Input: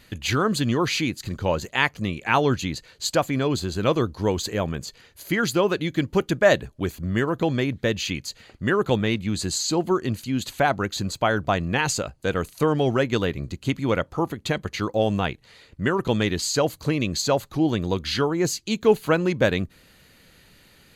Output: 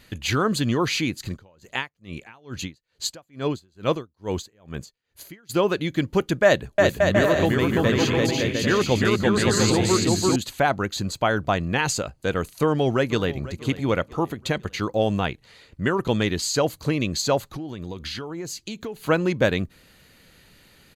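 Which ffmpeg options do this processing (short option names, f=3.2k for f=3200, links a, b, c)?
-filter_complex "[0:a]asplit=3[a][b][c];[a]afade=t=out:st=1.27:d=0.02[d];[b]aeval=exprs='val(0)*pow(10,-35*(0.5-0.5*cos(2*PI*2.3*n/s))/20)':c=same,afade=t=in:st=1.27:d=0.02,afade=t=out:st=5.49:d=0.02[e];[c]afade=t=in:st=5.49:d=0.02[f];[d][e][f]amix=inputs=3:normalize=0,asettb=1/sr,asplit=3[g][h][i];[g]atrim=end=6.444[j];[h]atrim=start=6.44:end=10.36,asetpts=PTS-STARTPTS,afade=t=in:d=0.004:c=qsin,afade=t=out:st=3.916:d=0.004:c=qsin,aecho=1:1:340|561|704.6|798|858.7|898.2|923.8:0.794|0.631|0.501|0.398|0.316|0.251|0.2,atrim=end_sample=172872[k];[i]atrim=start=10.356[l];[j][k]acrossfade=d=0.004:c1=hsin:c2=qsin[m];[m][l]acrossfade=d=0.004:c1=qsin:c2=hsin,asplit=2[n][o];[o]afade=t=in:st=12.54:d=0.01,afade=t=out:st=13.48:d=0.01,aecho=0:1:490|980|1470:0.149624|0.0598494|0.0239398[p];[n][p]amix=inputs=2:normalize=0,asettb=1/sr,asplit=3[q][r][s];[q]atrim=end=17.414[t];[r]atrim=start=17.41:end=19.06,asetpts=PTS-STARTPTS,afade=t=in:d=0.004:c=qsin,afade=t=out:st=1.646:d=0.004:c=qsin,acompressor=threshold=-28dB:ratio=16:attack=3.2:release=140:knee=1:detection=peak[u];[s]atrim=start=19.056[v];[t][u]acrossfade=d=0.004:c1=hsin:c2=qsin[w];[w][v]acrossfade=d=0.004:c1=qsin:c2=hsin"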